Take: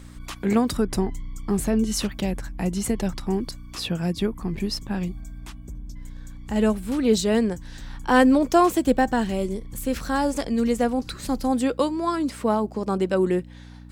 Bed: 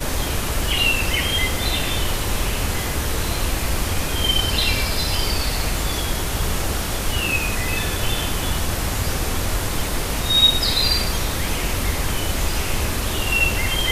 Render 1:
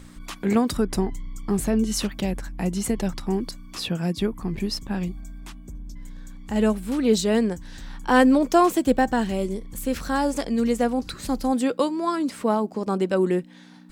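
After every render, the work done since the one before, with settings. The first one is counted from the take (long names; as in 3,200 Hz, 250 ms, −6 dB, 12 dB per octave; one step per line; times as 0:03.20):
hum removal 60 Hz, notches 2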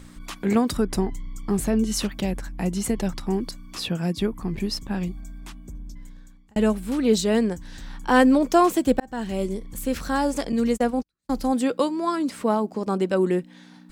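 0:05.85–0:06.56: fade out
0:09.00–0:09.41: fade in
0:10.52–0:11.32: noise gate −27 dBFS, range −48 dB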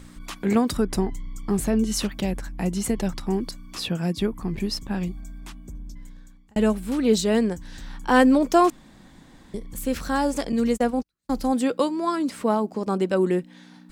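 0:08.70–0:09.54: fill with room tone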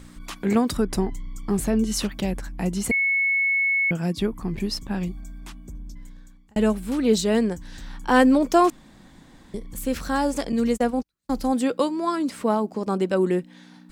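0:02.91–0:03.91: beep over 2,200 Hz −18.5 dBFS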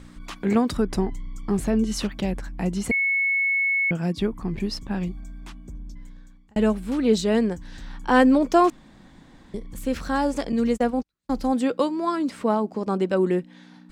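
high-shelf EQ 8,000 Hz −11.5 dB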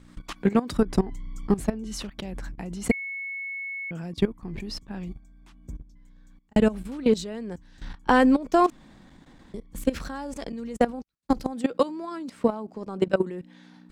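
transient designer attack +7 dB, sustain +1 dB
output level in coarse steps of 17 dB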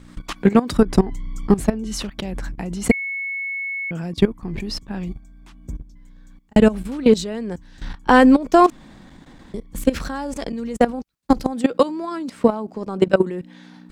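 level +7 dB
brickwall limiter −2 dBFS, peak gain reduction 2.5 dB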